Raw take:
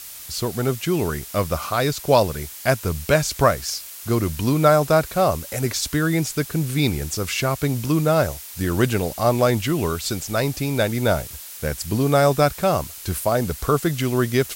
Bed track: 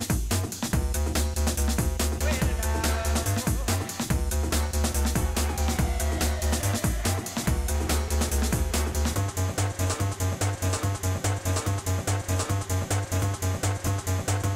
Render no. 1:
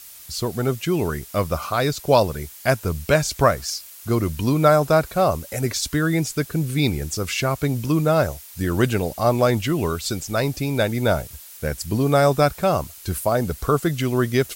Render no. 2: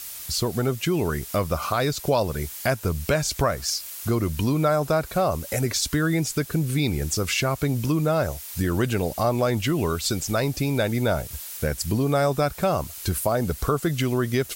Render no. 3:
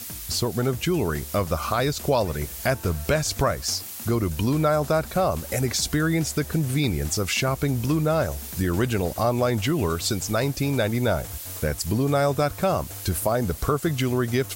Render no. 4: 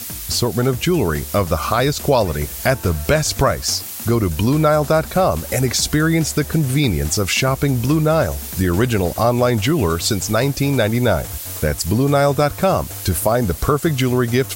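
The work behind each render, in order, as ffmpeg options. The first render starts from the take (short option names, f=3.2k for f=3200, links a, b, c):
-af "afftdn=nr=6:nf=-38"
-filter_complex "[0:a]asplit=2[a][b];[b]alimiter=limit=-13.5dB:level=0:latency=1,volume=-1dB[c];[a][c]amix=inputs=2:normalize=0,acompressor=threshold=-25dB:ratio=2"
-filter_complex "[1:a]volume=-15.5dB[a];[0:a][a]amix=inputs=2:normalize=0"
-af "volume=6.5dB"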